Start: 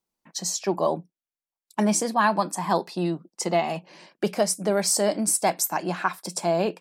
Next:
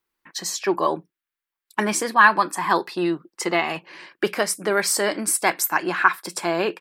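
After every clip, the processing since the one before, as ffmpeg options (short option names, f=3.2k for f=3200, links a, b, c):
-af "firequalizer=gain_entry='entry(120,0);entry(180,-9);entry(340,3);entry(640,-6);entry(1100,6);entry(1700,10);entry(2400,6);entry(6100,-4);entry(14000,3)':delay=0.05:min_phase=1,volume=2.5dB"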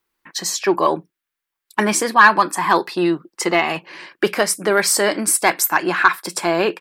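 -af "asoftclip=type=tanh:threshold=-5.5dB,volume=5dB"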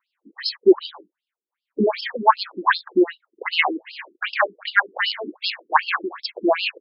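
-af "afftfilt=real='re*between(b*sr/1024,290*pow(3900/290,0.5+0.5*sin(2*PI*2.6*pts/sr))/1.41,290*pow(3900/290,0.5+0.5*sin(2*PI*2.6*pts/sr))*1.41)':imag='im*between(b*sr/1024,290*pow(3900/290,0.5+0.5*sin(2*PI*2.6*pts/sr))/1.41,290*pow(3900/290,0.5+0.5*sin(2*PI*2.6*pts/sr))*1.41)':win_size=1024:overlap=0.75,volume=5.5dB"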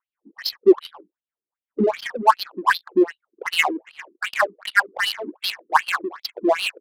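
-af "adynamicsmooth=sensitivity=3.5:basefreq=1.1k"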